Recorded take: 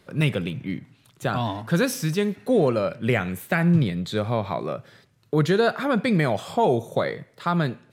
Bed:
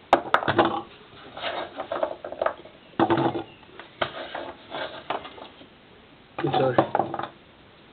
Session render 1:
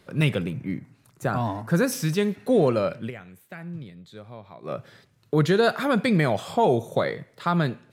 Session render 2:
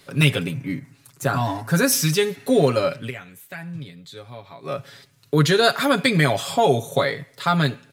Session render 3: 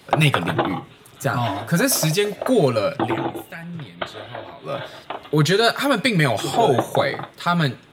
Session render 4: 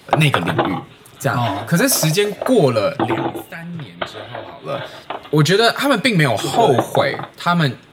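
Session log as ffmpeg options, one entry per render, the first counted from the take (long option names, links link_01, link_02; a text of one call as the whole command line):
ffmpeg -i in.wav -filter_complex "[0:a]asettb=1/sr,asplit=3[link_01][link_02][link_03];[link_01]atrim=end=0.434[link_04];[link_02]atrim=start=0.43:end=1.92,asetpts=PTS-STARTPTS,afade=type=in:duration=0.004:curve=qsin,afade=type=out:start_time=1.486:duration=0.004:curve=qsin,equalizer=frequency=3300:width=2:gain=-13[link_05];[link_03]atrim=start=1.916[link_06];[link_04][link_05]acrossfade=duration=0.004:curve1=hsin:curve2=qsin[link_07];[link_07][link_06]acrossfade=duration=0.004:curve1=qsin:curve2=hsin,asettb=1/sr,asplit=3[link_08][link_09][link_10];[link_08]atrim=end=5.634[link_11];[link_09]atrim=start=5.63:end=6.07,asetpts=PTS-STARTPTS,afade=type=in:duration=0.004:curve=qsin,afade=type=out:start_time=0.436:duration=0.004:curve=qsin,highshelf=frequency=5000:gain=7[link_12];[link_10]atrim=start=6.066[link_13];[link_11][link_12]acrossfade=duration=0.004:curve1=hsin:curve2=qsin[link_14];[link_14][link_13]acrossfade=duration=0.004:curve1=qsin:curve2=hsin,asplit=3[link_15][link_16][link_17];[link_15]atrim=end=3.11,asetpts=PTS-STARTPTS,afade=type=out:start_time=2.99:duration=0.12:silence=0.133352[link_18];[link_16]atrim=start=3.11:end=4.62,asetpts=PTS-STARTPTS,volume=-17.5dB[link_19];[link_17]atrim=start=4.62,asetpts=PTS-STARTPTS,afade=type=in:duration=0.12:silence=0.133352[link_20];[link_18][link_19][link_20]concat=n=3:v=0:a=1" out.wav
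ffmpeg -i in.wav -af "highshelf=frequency=2100:gain=11,aecho=1:1:7.2:0.69" out.wav
ffmpeg -i in.wav -i bed.wav -filter_complex "[1:a]volume=-1.5dB[link_01];[0:a][link_01]amix=inputs=2:normalize=0" out.wav
ffmpeg -i in.wav -af "volume=3.5dB,alimiter=limit=-1dB:level=0:latency=1" out.wav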